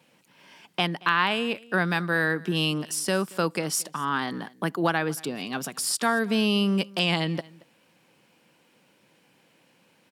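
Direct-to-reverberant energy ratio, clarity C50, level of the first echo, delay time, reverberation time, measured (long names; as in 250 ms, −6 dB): no reverb audible, no reverb audible, −23.0 dB, 227 ms, no reverb audible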